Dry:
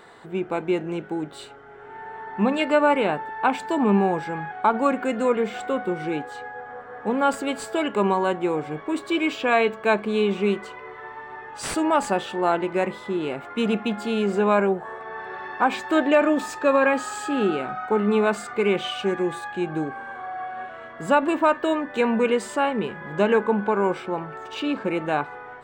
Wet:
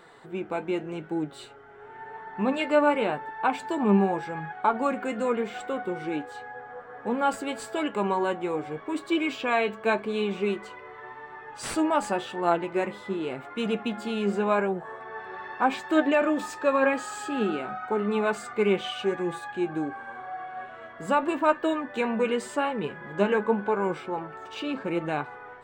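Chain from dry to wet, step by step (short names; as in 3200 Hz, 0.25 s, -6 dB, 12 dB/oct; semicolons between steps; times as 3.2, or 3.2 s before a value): flange 0.88 Hz, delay 5.7 ms, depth 4.9 ms, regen +51%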